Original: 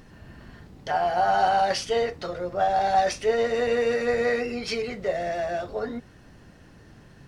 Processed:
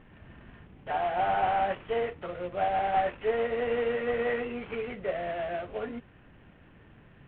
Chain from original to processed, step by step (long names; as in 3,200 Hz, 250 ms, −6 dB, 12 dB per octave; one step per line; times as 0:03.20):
variable-slope delta modulation 16 kbit/s
level −4.5 dB